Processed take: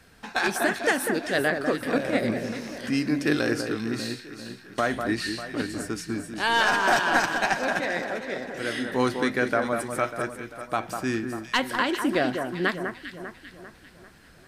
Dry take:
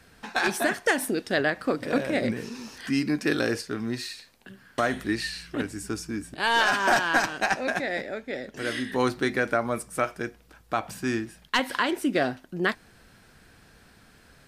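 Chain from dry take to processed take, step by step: echo with dull and thin repeats by turns 0.198 s, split 1800 Hz, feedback 67%, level -6 dB

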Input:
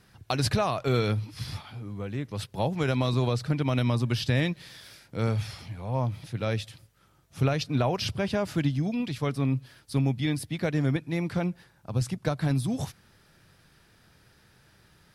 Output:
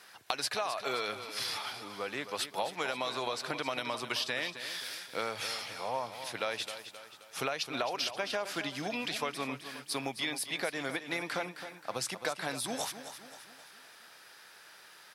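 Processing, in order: HPF 680 Hz 12 dB/oct; compressor, threshold -39 dBFS, peak gain reduction 14 dB; on a send: feedback echo 0.264 s, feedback 47%, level -11 dB; on the sum: gain +8 dB

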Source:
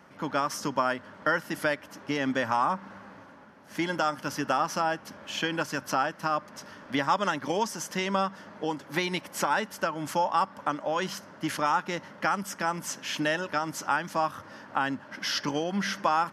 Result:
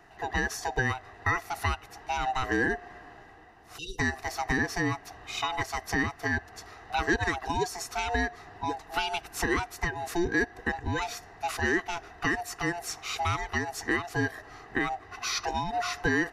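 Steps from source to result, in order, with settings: band-swap scrambler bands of 500 Hz; spectral delete 3.78–3.99, 550–2700 Hz; gain -1 dB

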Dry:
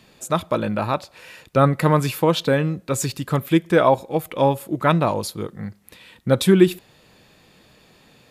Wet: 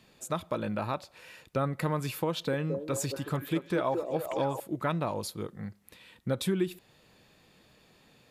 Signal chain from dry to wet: compressor 2.5:1, threshold -20 dBFS, peak gain reduction 9 dB; 2.3–4.6 delay with a stepping band-pass 0.221 s, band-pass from 420 Hz, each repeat 0.7 oct, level -2.5 dB; gain -8 dB

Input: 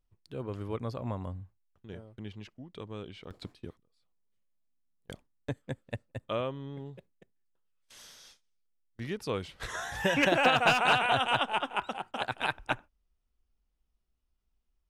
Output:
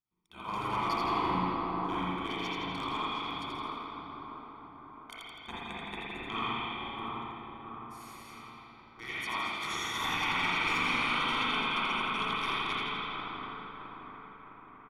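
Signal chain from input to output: one diode to ground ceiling -22 dBFS; gate -59 dBFS, range -11 dB; spectral gate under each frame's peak -10 dB weak; low shelf 120 Hz -10.5 dB; notch 7700 Hz, Q 8.3; comb 0.9 ms, depth 81%; compressor 6:1, threshold -37 dBFS, peak gain reduction 11 dB; 0.44–2.97 sample leveller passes 2; split-band echo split 1600 Hz, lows 0.66 s, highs 83 ms, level -4 dB; spring tank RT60 2.6 s, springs 39/55 ms, chirp 50 ms, DRR -9 dB

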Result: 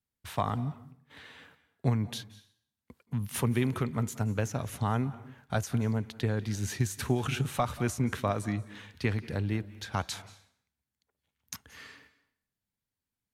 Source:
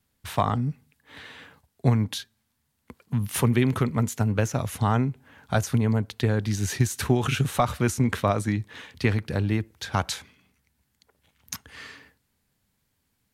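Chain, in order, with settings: gate -52 dBFS, range -11 dB; on a send: reverb RT60 0.60 s, pre-delay 0.166 s, DRR 17 dB; on the sum: gain -6.5 dB

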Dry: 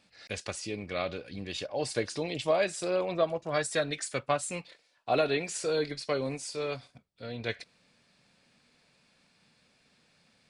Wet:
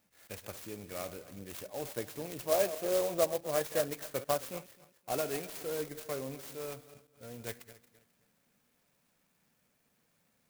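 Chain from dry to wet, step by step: regenerating reverse delay 0.131 s, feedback 51%, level -13.5 dB; 2.51–4.59 dynamic EQ 520 Hz, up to +7 dB, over -40 dBFS, Q 0.88; clock jitter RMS 0.082 ms; gain -7.5 dB

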